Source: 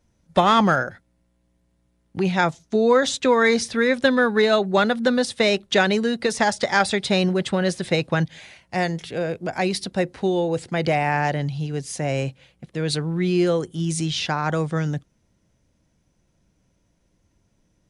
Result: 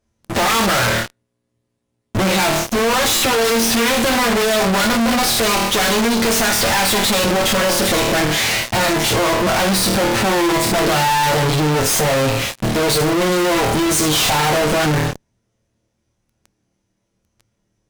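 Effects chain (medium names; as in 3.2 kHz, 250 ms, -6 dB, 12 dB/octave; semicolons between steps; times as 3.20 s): comb filter that takes the minimum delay 9 ms; valve stage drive 33 dB, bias 0.65; flutter echo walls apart 4.5 m, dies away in 0.35 s; in parallel at -3 dB: fuzz box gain 64 dB, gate -58 dBFS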